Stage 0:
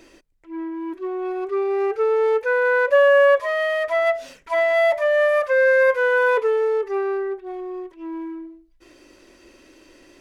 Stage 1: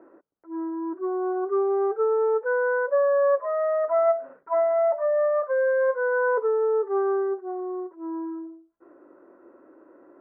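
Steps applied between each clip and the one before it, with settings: elliptic low-pass 1.4 kHz, stop band 70 dB; gain riding within 4 dB 0.5 s; high-pass 290 Hz 12 dB/octave; trim -2.5 dB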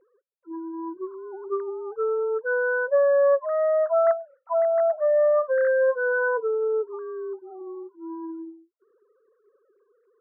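formants replaced by sine waves; dynamic bell 370 Hz, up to -3 dB, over -35 dBFS, Q 1.1; trim +1.5 dB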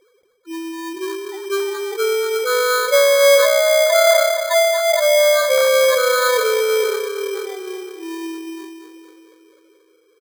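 feedback delay 233 ms, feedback 58%, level -9 dB; sample-and-hold 16×; decay stretcher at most 33 dB/s; trim +6 dB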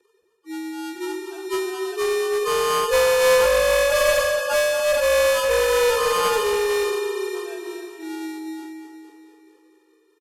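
frequency axis rescaled in octaves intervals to 89%; speakerphone echo 290 ms, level -10 dB; one-sided clip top -16.5 dBFS; trim -2.5 dB

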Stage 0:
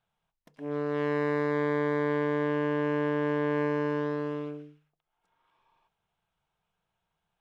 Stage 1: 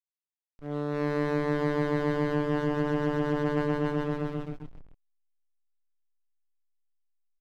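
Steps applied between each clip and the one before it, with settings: frequency-shifting echo 291 ms, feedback 45%, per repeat -140 Hz, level -8 dB; hysteresis with a dead band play -30 dBFS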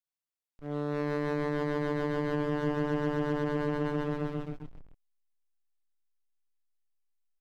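peak limiter -19.5 dBFS, peak gain reduction 5 dB; trim -1.5 dB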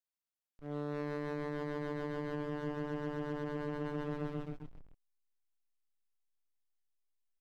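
gain riding within 3 dB 0.5 s; trim -7.5 dB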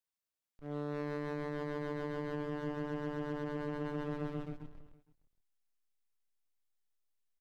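delay 464 ms -23 dB

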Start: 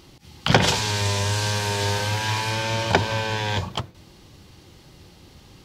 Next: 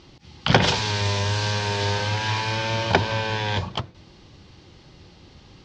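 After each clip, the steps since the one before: low-pass 5.8 kHz 24 dB/octave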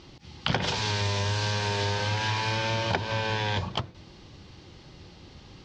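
compression 5:1, threshold -24 dBFS, peak gain reduction 12.5 dB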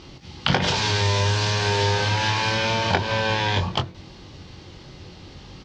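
doubling 22 ms -7 dB; trim +5.5 dB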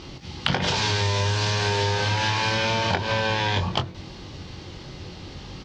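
compression 4:1, threshold -24 dBFS, peak gain reduction 8.5 dB; trim +3.5 dB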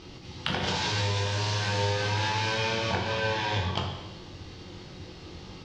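plate-style reverb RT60 1.1 s, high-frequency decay 0.95×, DRR 0.5 dB; trim -7.5 dB

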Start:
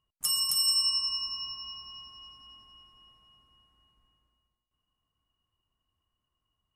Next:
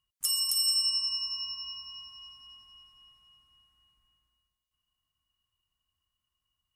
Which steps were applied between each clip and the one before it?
amplifier tone stack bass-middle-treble 5-5-5; in parallel at -1 dB: compression, threshold -42 dBFS, peak gain reduction 12.5 dB; on the sum: trim +3.5 dB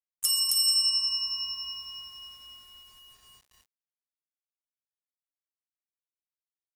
bit crusher 10-bit; trim +3 dB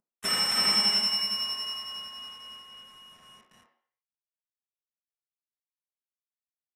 CVSD coder 64 kbps; in parallel at -7 dB: saturation -25 dBFS, distortion -13 dB; on the sum: reverberation RT60 0.60 s, pre-delay 3 ms, DRR -0.5 dB; trim -7 dB

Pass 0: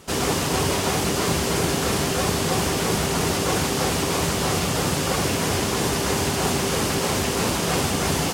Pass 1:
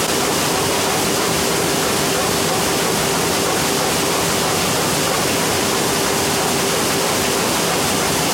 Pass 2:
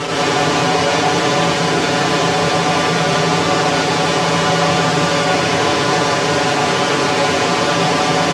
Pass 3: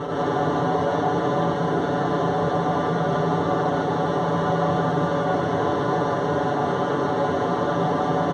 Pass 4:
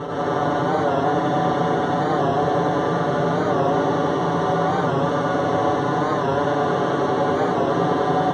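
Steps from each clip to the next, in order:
high-pass 270 Hz 6 dB/octave; level flattener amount 100%; trim +4 dB
distance through air 120 m; comb 6.9 ms, depth 93%; gated-style reverb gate 190 ms rising, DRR -5 dB; trim -4.5 dB
boxcar filter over 18 samples; trim -5 dB
thinning echo 95 ms, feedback 83%, high-pass 180 Hz, level -5.5 dB; warped record 45 rpm, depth 100 cents

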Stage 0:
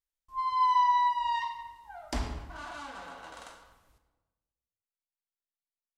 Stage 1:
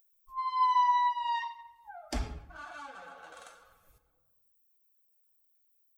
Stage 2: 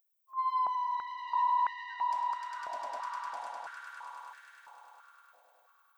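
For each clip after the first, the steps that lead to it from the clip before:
expander on every frequency bin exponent 1.5; upward compressor, threshold -43 dBFS
echo with a slow build-up 101 ms, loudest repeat 5, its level -6 dB; peak limiter -26 dBFS, peak gain reduction 12.5 dB; step-sequenced high-pass 3 Hz 650–1700 Hz; trim -8 dB

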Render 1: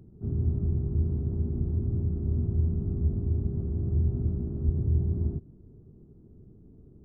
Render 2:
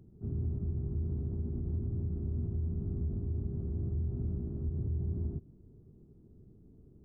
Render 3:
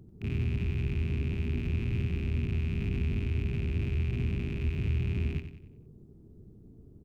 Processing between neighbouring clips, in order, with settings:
peak limiter -22 dBFS, peak gain reduction 8.5 dB; trim -5 dB
rattle on loud lows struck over -44 dBFS, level -38 dBFS; feedback delay 92 ms, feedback 42%, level -9.5 dB; trim +4 dB

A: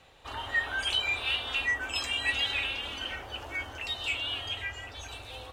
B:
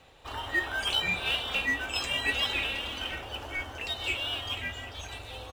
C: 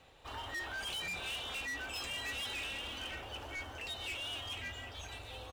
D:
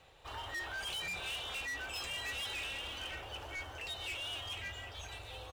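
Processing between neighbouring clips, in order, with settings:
in parallel at -11.5 dB: sample-and-hold 20×; on the sum: delay 473 ms -14 dB
saturation -32.5 dBFS, distortion -8 dB; trim -4.5 dB
peaking EQ 250 Hz -8 dB 0.49 oct

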